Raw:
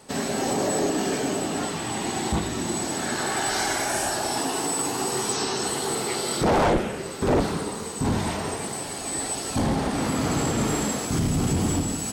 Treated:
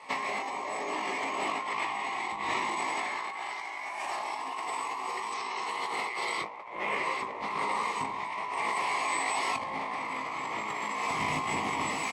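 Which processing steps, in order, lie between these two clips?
pair of resonant band-passes 1,500 Hz, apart 1 octave
ambience of single reflections 19 ms −3 dB, 34 ms −7 dB
compressor whose output falls as the input rises −43 dBFS, ratio −1
level +9 dB

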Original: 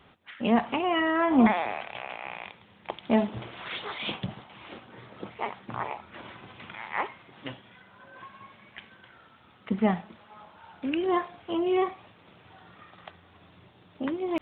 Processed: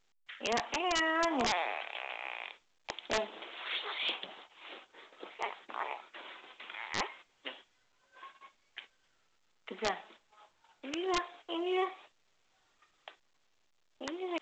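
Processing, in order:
noise gate −47 dBFS, range −38 dB
high-pass filter 340 Hz 24 dB per octave
high-shelf EQ 2,500 Hz +11.5 dB
wrap-around overflow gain 15.5 dB
level −6.5 dB
A-law companding 128 kbit/s 16,000 Hz

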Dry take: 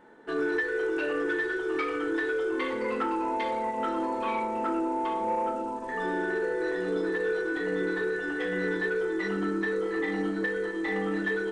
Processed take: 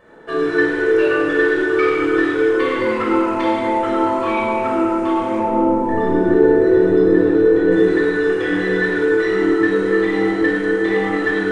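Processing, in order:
0:05.39–0:07.72: tilt shelving filter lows +9 dB, about 740 Hz
rectangular room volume 3,500 cubic metres, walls mixed, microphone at 5.8 metres
level +4 dB

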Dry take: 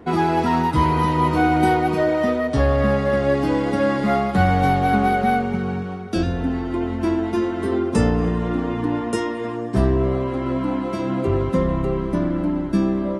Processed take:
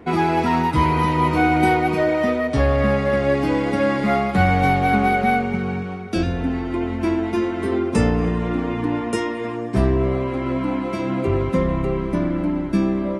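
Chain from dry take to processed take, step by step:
parametric band 2,300 Hz +7.5 dB 0.35 octaves

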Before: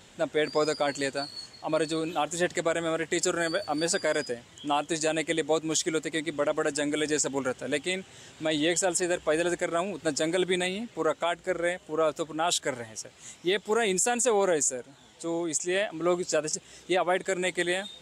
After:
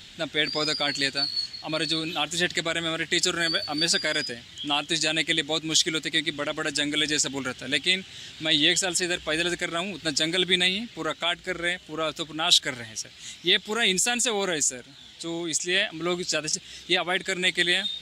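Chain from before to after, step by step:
octave-band graphic EQ 125/250/500/1,000/4,000/8,000 Hz −4/−3/−12/−9/+8/−8 dB
level +7.5 dB

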